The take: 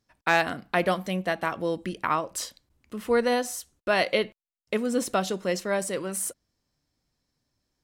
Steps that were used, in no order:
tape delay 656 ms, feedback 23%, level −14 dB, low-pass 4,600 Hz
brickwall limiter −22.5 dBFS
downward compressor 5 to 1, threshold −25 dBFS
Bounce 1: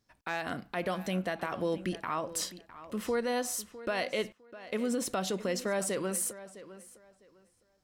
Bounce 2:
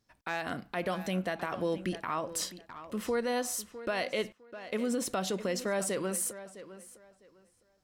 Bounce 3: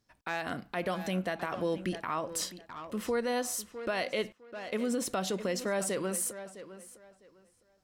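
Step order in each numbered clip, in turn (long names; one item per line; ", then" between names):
downward compressor, then brickwall limiter, then tape delay
downward compressor, then tape delay, then brickwall limiter
tape delay, then downward compressor, then brickwall limiter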